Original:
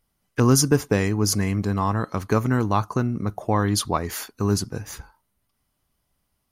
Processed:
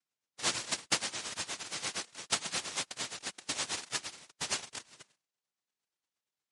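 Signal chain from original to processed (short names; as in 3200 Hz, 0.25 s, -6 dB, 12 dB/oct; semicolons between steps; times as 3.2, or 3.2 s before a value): FFT order left unsorted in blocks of 16 samples; harmonic tremolo 8.6 Hz, depth 100%, crossover 2100 Hz; fixed phaser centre 1100 Hz, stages 8; noise vocoder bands 1; gain -6 dB; MP3 48 kbps 48000 Hz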